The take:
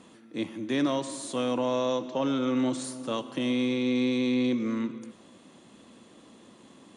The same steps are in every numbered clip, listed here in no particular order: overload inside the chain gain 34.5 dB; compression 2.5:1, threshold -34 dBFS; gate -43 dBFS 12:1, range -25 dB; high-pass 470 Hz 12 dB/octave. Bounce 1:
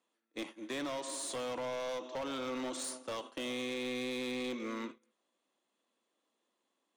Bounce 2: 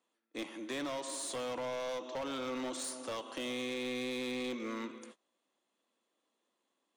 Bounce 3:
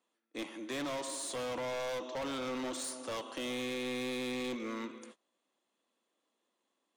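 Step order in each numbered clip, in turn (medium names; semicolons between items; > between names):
high-pass > compression > gate > overload inside the chain; gate > high-pass > compression > overload inside the chain; gate > high-pass > overload inside the chain > compression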